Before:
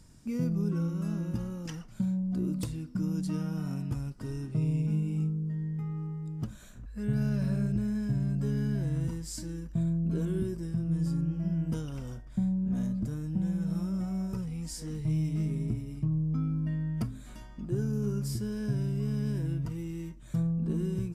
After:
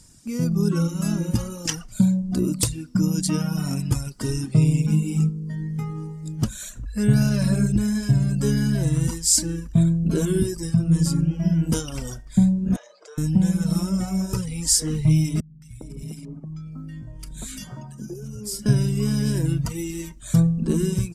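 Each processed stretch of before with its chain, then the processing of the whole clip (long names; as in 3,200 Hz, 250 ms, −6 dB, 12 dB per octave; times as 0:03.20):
0:12.76–0:13.18: elliptic high-pass filter 440 Hz, stop band 50 dB + downward compressor 3 to 1, threshold −53 dBFS + high-frequency loss of the air 140 metres
0:15.40–0:18.66: downward compressor 12 to 1, threshold −40 dBFS + three-band delay without the direct sound lows, highs, mids 220/410 ms, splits 180/1,400 Hz
whole clip: reverb reduction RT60 1.3 s; parametric band 8,200 Hz +12 dB 2 octaves; automatic gain control gain up to 11 dB; level +2 dB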